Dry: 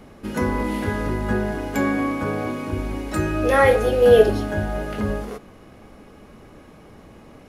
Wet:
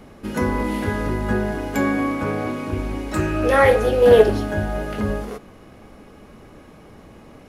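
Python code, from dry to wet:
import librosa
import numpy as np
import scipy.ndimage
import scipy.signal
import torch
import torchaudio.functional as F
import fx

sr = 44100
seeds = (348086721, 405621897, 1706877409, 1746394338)

y = fx.doppler_dist(x, sr, depth_ms=0.17, at=(2.14, 4.38))
y = F.gain(torch.from_numpy(y), 1.0).numpy()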